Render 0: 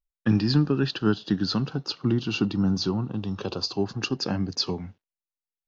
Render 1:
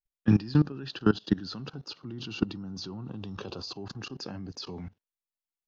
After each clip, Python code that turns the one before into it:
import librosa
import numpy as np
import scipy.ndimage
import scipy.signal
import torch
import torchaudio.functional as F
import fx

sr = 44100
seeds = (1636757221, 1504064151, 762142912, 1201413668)

y = fx.level_steps(x, sr, step_db=20)
y = y * librosa.db_to_amplitude(1.5)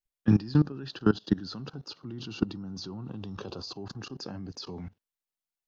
y = fx.dynamic_eq(x, sr, hz=2500.0, q=1.4, threshold_db=-55.0, ratio=4.0, max_db=-5)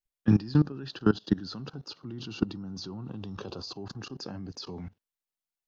y = x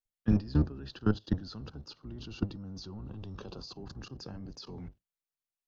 y = fx.octave_divider(x, sr, octaves=1, level_db=0.0)
y = y * librosa.db_to_amplitude(-6.0)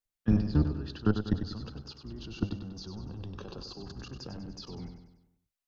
y = fx.echo_feedback(x, sr, ms=97, feedback_pct=49, wet_db=-8.0)
y = y * librosa.db_to_amplitude(1.0)